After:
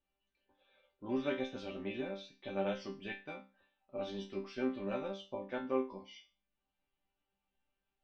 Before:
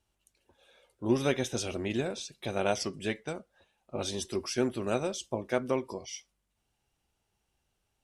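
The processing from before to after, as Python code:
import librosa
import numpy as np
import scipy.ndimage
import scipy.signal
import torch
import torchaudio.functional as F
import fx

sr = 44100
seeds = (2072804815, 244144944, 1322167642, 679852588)

y = scipy.signal.sosfilt(scipy.signal.butter(4, 3600.0, 'lowpass', fs=sr, output='sos'), x)
y = fx.resonator_bank(y, sr, root=55, chord='sus4', decay_s=0.32)
y = y * 10.0 ** (9.5 / 20.0)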